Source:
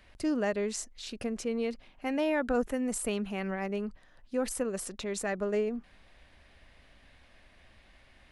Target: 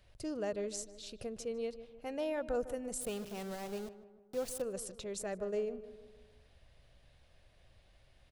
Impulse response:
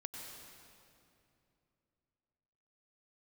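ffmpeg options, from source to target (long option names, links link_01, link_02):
-filter_complex "[0:a]asettb=1/sr,asplit=3[link_01][link_02][link_03];[link_01]atrim=end=3.014[link_04];[link_02]atrim=start=3.01:end=4.62,asetpts=PTS-STARTPTS,afade=type=in:duration=0.004:curve=qsin,afade=type=out:start_time=1.606:duration=0.004:curve=qsin,aeval=exprs='val(0)*gte(abs(val(0)),0.015)':channel_layout=same[link_05];[link_03]atrim=start=4.616[link_06];[link_04][link_05]acrossfade=duration=0.004:curve1=hsin:curve2=qsin[link_07];[link_07][link_06]acrossfade=duration=0.004:curve1=qsin:curve2=hsin,equalizer=frequency=125:width_type=o:width=1:gain=7,equalizer=frequency=250:width_type=o:width=1:gain=-10,equalizer=frequency=500:width_type=o:width=1:gain=3,equalizer=frequency=1000:width_type=o:width=1:gain=-5,equalizer=frequency=2000:width_type=o:width=1:gain=-8,asplit=2[link_08][link_09];[link_09]adelay=153,lowpass=frequency=1700:poles=1,volume=-13dB,asplit=2[link_10][link_11];[link_11]adelay=153,lowpass=frequency=1700:poles=1,volume=0.53,asplit=2[link_12][link_13];[link_13]adelay=153,lowpass=frequency=1700:poles=1,volume=0.53,asplit=2[link_14][link_15];[link_15]adelay=153,lowpass=frequency=1700:poles=1,volume=0.53,asplit=2[link_16][link_17];[link_17]adelay=153,lowpass=frequency=1700:poles=1,volume=0.53[link_18];[link_08][link_10][link_12][link_14][link_16][link_18]amix=inputs=6:normalize=0,volume=-4.5dB"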